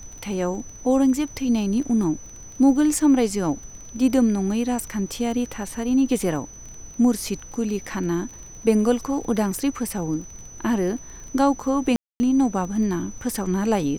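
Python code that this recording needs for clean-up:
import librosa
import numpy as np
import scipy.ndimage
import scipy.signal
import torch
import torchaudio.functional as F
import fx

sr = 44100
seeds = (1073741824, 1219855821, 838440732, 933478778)

y = fx.fix_declick_ar(x, sr, threshold=6.5)
y = fx.notch(y, sr, hz=6000.0, q=30.0)
y = fx.fix_ambience(y, sr, seeds[0], print_start_s=6.47, print_end_s=6.97, start_s=11.96, end_s=12.2)
y = fx.noise_reduce(y, sr, print_start_s=6.47, print_end_s=6.97, reduce_db=26.0)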